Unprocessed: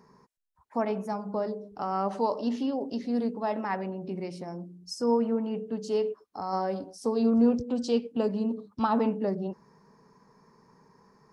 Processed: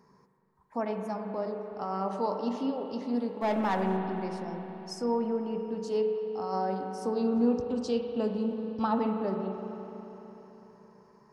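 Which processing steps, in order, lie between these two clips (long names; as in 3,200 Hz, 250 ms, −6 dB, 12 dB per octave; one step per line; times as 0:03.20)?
0:03.41–0:03.97: leveller curve on the samples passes 2
spring reverb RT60 3.9 s, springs 37/41 ms, chirp 25 ms, DRR 4.5 dB
level −3.5 dB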